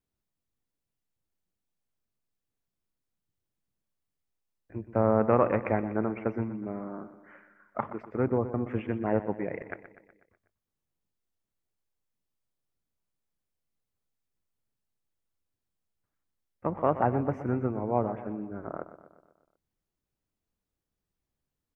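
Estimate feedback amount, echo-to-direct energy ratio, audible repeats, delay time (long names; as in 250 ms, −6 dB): 56%, −11.5 dB, 5, 123 ms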